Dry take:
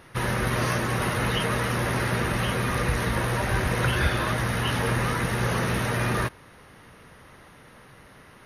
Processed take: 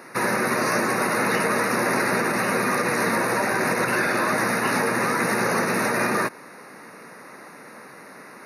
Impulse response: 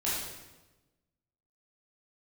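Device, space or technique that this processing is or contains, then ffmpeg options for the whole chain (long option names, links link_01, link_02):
PA system with an anti-feedback notch: -af "highpass=frequency=200:width=0.5412,highpass=frequency=200:width=1.3066,asuperstop=centerf=3200:order=4:qfactor=2.3,alimiter=limit=-21.5dB:level=0:latency=1:release=88,volume=8.5dB"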